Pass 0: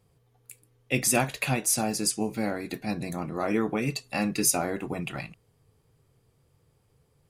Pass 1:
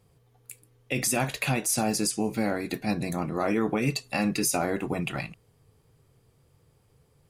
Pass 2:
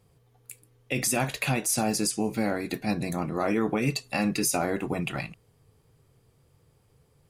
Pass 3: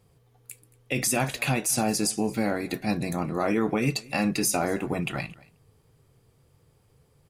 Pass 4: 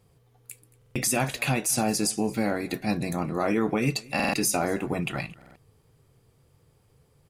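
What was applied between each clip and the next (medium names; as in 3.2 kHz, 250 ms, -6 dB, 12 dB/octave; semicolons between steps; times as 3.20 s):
peak limiter -19 dBFS, peak gain reduction 9 dB; trim +3 dB
no audible change
delay 225 ms -22.5 dB; trim +1 dB
buffer glitch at 0.77/4.15/5.37 s, samples 2048, times 3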